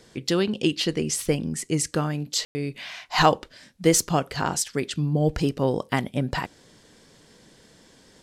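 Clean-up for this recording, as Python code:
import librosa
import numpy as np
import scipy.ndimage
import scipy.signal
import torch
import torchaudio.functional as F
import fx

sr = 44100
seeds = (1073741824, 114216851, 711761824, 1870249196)

y = fx.fix_ambience(x, sr, seeds[0], print_start_s=6.79, print_end_s=7.29, start_s=2.45, end_s=2.55)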